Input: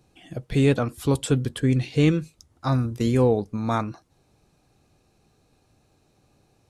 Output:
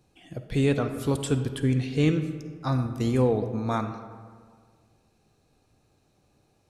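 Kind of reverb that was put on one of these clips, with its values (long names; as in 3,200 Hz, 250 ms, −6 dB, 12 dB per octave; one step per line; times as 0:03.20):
comb and all-pass reverb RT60 1.8 s, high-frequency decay 0.5×, pre-delay 10 ms, DRR 8.5 dB
level −3.5 dB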